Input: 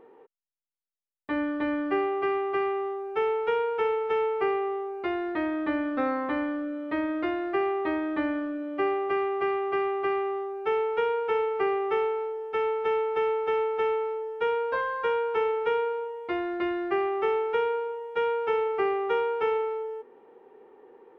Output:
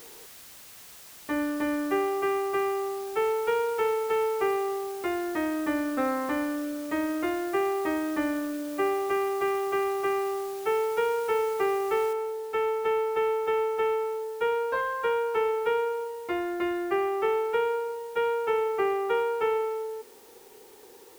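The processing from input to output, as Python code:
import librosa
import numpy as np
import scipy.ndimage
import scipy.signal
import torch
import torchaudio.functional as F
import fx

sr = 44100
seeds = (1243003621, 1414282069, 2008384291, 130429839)

y = fx.noise_floor_step(x, sr, seeds[0], at_s=12.13, before_db=-48, after_db=-56, tilt_db=0.0)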